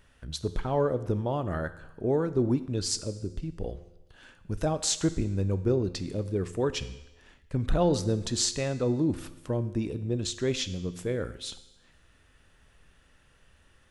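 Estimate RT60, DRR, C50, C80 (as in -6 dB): 1.0 s, 12.0 dB, 14.5 dB, 16.0 dB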